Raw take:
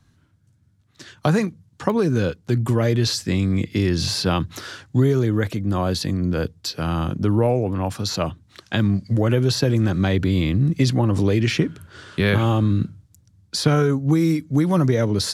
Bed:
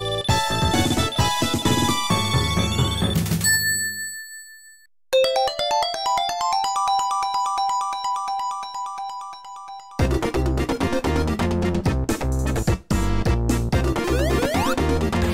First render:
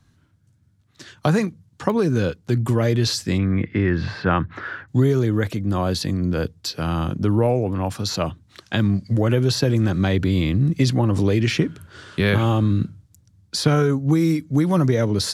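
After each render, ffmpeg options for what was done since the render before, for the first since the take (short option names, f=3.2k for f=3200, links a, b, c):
-filter_complex "[0:a]asplit=3[a][b][c];[a]afade=t=out:st=3.37:d=0.02[d];[b]lowpass=f=1.7k:t=q:w=2.4,afade=t=in:st=3.37:d=0.02,afade=t=out:st=4.87:d=0.02[e];[c]afade=t=in:st=4.87:d=0.02[f];[d][e][f]amix=inputs=3:normalize=0"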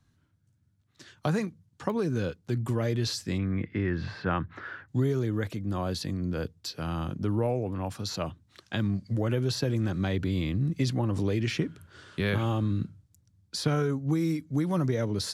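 -af "volume=-9dB"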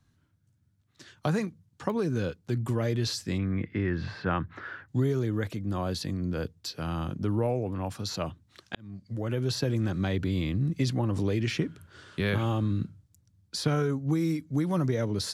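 -filter_complex "[0:a]asplit=2[a][b];[a]atrim=end=8.75,asetpts=PTS-STARTPTS,afade=t=out:st=8.746:d=0.004:c=hsin[c];[b]atrim=start=8.75,asetpts=PTS-STARTPTS,afade=t=in:d=0.78[d];[c][d]concat=n=2:v=0:a=1"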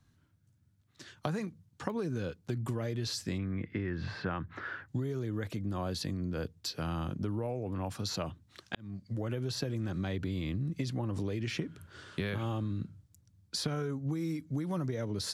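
-af "acompressor=threshold=-31dB:ratio=6"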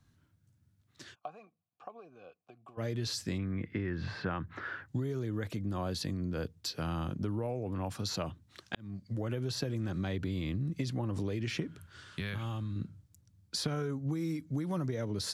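-filter_complex "[0:a]asplit=3[a][b][c];[a]afade=t=out:st=1.14:d=0.02[d];[b]asplit=3[e][f][g];[e]bandpass=f=730:t=q:w=8,volume=0dB[h];[f]bandpass=f=1.09k:t=q:w=8,volume=-6dB[i];[g]bandpass=f=2.44k:t=q:w=8,volume=-9dB[j];[h][i][j]amix=inputs=3:normalize=0,afade=t=in:st=1.14:d=0.02,afade=t=out:st=2.77:d=0.02[k];[c]afade=t=in:st=2.77:d=0.02[l];[d][k][l]amix=inputs=3:normalize=0,asettb=1/sr,asplit=3[m][n][o];[m]atrim=end=11.804[p];[n]atrim=start=11.8:end=12.76,asetpts=PTS-STARTPTS,afade=t=in:d=0.004:c=qsin,afade=t=out:st=0.956:d=0.004:c=qsin,equalizer=f=430:t=o:w=2:g=-9[q];[o]atrim=start=12.756[r];[p][q]acrossfade=d=0.004:c1=hsin:c2=qsin[s];[s][r]acrossfade=d=0.004:c1=qsin:c2=hsin"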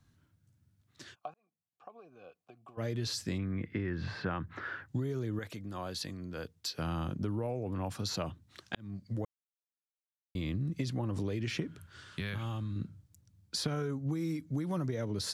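-filter_complex "[0:a]asettb=1/sr,asplit=3[a][b][c];[a]atrim=end=5.394[d];[b]atrim=start=5.39:end=6.79,asetpts=PTS-STARTPTS,afade=t=in:d=0.004:c=qsin,afade=t=out:st=1.396:d=0.004:c=qsin,lowshelf=f=460:g=-8.5[e];[c]atrim=start=6.786[f];[d][e]acrossfade=d=0.004:c1=hsin:c2=qsin[g];[g][f]acrossfade=d=0.004:c1=qsin:c2=hsin,asplit=4[h][i][j][k];[h]atrim=end=1.34,asetpts=PTS-STARTPTS,afade=t=out:st=1.336:d=0.004:c=hsin[l];[i]atrim=start=1.34:end=9.25,asetpts=PTS-STARTPTS,afade=t=in:d=0.9,afade=t=out:st=7.906:d=0.004:c=hsin[m];[j]atrim=start=9.25:end=10.35,asetpts=PTS-STARTPTS,volume=0[n];[k]atrim=start=10.35,asetpts=PTS-STARTPTS,afade=t=in:d=0.004:c=hsin[o];[l][m][n][o]concat=n=4:v=0:a=1"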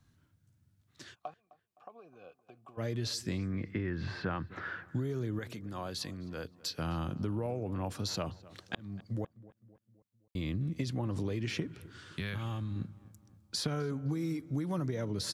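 -filter_complex "[0:a]asplit=2[a][b];[b]adelay=258,lowpass=f=2.2k:p=1,volume=-19dB,asplit=2[c][d];[d]adelay=258,lowpass=f=2.2k:p=1,volume=0.52,asplit=2[e][f];[f]adelay=258,lowpass=f=2.2k:p=1,volume=0.52,asplit=2[g][h];[h]adelay=258,lowpass=f=2.2k:p=1,volume=0.52[i];[a][c][e][g][i]amix=inputs=5:normalize=0"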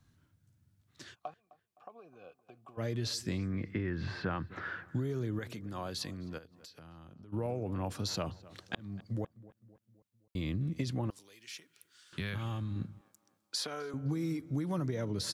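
-filter_complex "[0:a]asplit=3[a][b][c];[a]afade=t=out:st=6.37:d=0.02[d];[b]acompressor=threshold=-50dB:ratio=8:attack=3.2:release=140:knee=1:detection=peak,afade=t=in:st=6.37:d=0.02,afade=t=out:st=7.32:d=0.02[e];[c]afade=t=in:st=7.32:d=0.02[f];[d][e][f]amix=inputs=3:normalize=0,asettb=1/sr,asplit=3[g][h][i];[g]atrim=end=11.104[j];[h]atrim=start=11.1:end=12.13,asetpts=PTS-STARTPTS,afade=t=in:d=0.004:c=qsin,afade=t=out:st=1.026:d=0.004:c=qsin,aderivative[k];[i]atrim=start=12.126[l];[j][k]acrossfade=d=0.004:c1=hsin:c2=qsin[m];[m][l]acrossfade=d=0.004:c1=qsin:c2=hsin,asettb=1/sr,asplit=3[n][o][p];[n]atrim=end=13.014[q];[o]atrim=start=13.01:end=13.94,asetpts=PTS-STARTPTS,afade=t=in:d=0.004:c=qsin,afade=t=out:st=0.926:d=0.004:c=qsin,highpass=470[r];[p]atrim=start=13.936[s];[q][r]acrossfade=d=0.004:c1=hsin:c2=qsin[t];[t][s]acrossfade=d=0.004:c1=qsin:c2=hsin"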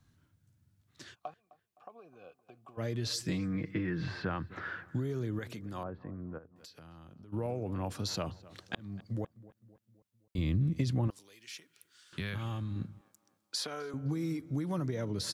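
-filter_complex "[0:a]asettb=1/sr,asplit=3[a][b][c];[a]atrim=end=3.094[d];[b]atrim=start=3.09:end=4.09,asetpts=PTS-STARTPTS,afade=t=in:d=0.004:c=qsin,afade=t=out:st=0.996:d=0.004:c=qsin,aecho=1:1:6.4:0.73,atrim=end_sample=44100[e];[c]atrim=start=4.086[f];[d][e]acrossfade=d=0.004:c1=hsin:c2=qsin[g];[g][f]acrossfade=d=0.004:c1=qsin:c2=hsin,asettb=1/sr,asplit=3[h][i][j];[h]atrim=end=5.834[k];[i]atrim=start=5.83:end=6.56,asetpts=PTS-STARTPTS,afade=t=in:d=0.004:c=qsin,afade=t=out:st=0.726:d=0.004:c=qsin,lowpass=f=1.4k:w=0.5412,lowpass=f=1.4k:w=1.3066[l];[j]atrim=start=6.556[m];[k][l]acrossfade=d=0.004:c1=hsin:c2=qsin[n];[n][m]acrossfade=d=0.004:c1=qsin:c2=hsin,asettb=1/sr,asplit=3[o][p][q];[o]atrim=end=10.384[r];[p]atrim=start=10.38:end=11.08,asetpts=PTS-STARTPTS,afade=t=in:d=0.004:c=qsin,afade=t=out:st=0.696:d=0.004:c=qsin,lowshelf=f=150:g=9.5[s];[q]atrim=start=11.076[t];[r][s]acrossfade=d=0.004:c1=hsin:c2=qsin[u];[u][t]acrossfade=d=0.004:c1=qsin:c2=hsin"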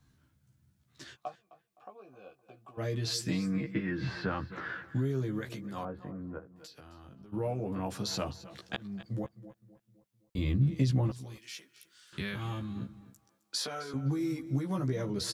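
-filter_complex "[0:a]asplit=2[a][b];[b]adelay=15,volume=-3dB[c];[a][c]amix=inputs=2:normalize=0,aecho=1:1:264:0.141"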